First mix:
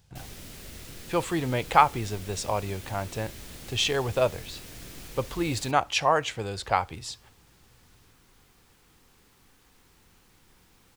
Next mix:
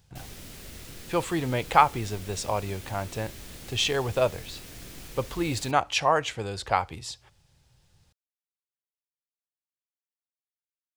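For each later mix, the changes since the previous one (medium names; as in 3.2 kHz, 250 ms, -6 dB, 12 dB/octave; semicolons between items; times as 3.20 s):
second sound: muted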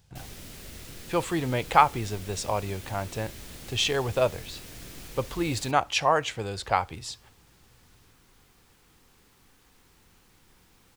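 second sound: unmuted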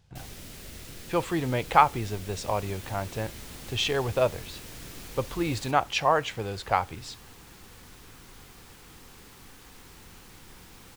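speech: add treble shelf 6.9 kHz -11 dB; second sound +10.5 dB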